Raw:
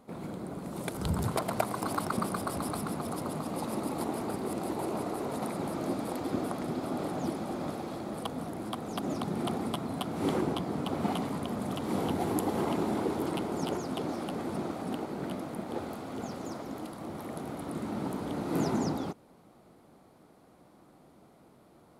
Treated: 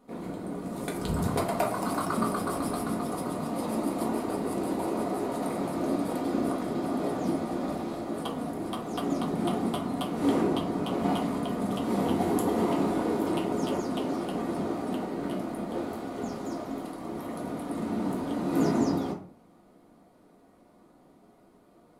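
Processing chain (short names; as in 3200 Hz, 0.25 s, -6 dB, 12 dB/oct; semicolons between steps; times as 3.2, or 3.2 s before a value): in parallel at -5 dB: crossover distortion -49.5 dBFS; on the sum: reverb RT60 0.45 s, pre-delay 4 ms, DRR -2.5 dB; gain -5.5 dB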